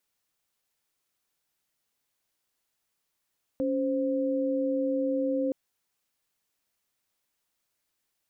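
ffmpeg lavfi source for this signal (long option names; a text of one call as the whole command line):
ffmpeg -f lavfi -i "aevalsrc='0.0422*(sin(2*PI*277.18*t)+sin(2*PI*523.25*t))':duration=1.92:sample_rate=44100" out.wav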